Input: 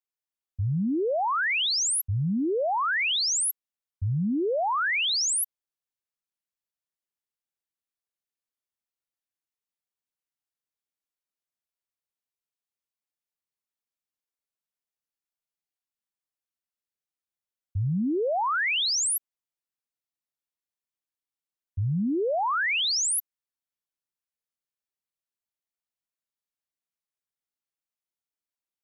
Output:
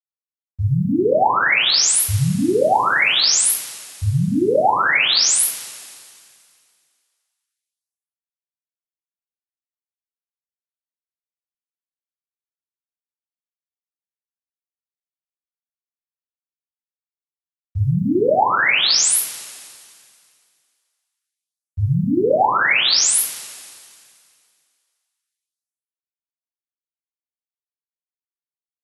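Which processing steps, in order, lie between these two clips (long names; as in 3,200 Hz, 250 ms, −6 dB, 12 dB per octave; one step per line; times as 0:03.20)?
centre clipping without the shift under −54.5 dBFS
coupled-rooms reverb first 0.35 s, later 2.3 s, from −20 dB, DRR −9 dB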